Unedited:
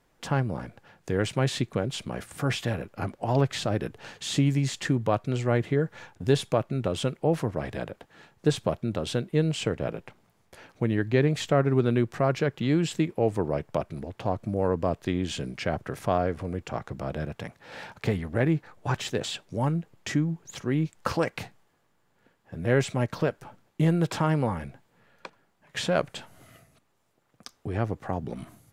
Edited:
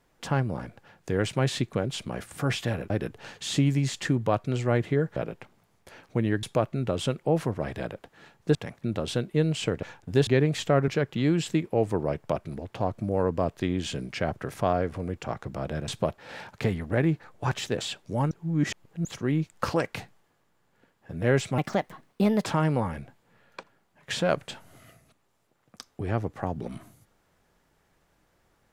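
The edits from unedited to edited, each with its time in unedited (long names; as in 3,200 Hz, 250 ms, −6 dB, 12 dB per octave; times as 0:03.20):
0:02.90–0:03.70: remove
0:05.96–0:06.40: swap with 0:09.82–0:11.09
0:08.52–0:08.82: swap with 0:17.33–0:17.61
0:11.70–0:12.33: remove
0:19.74–0:20.48: reverse
0:23.01–0:24.11: play speed 127%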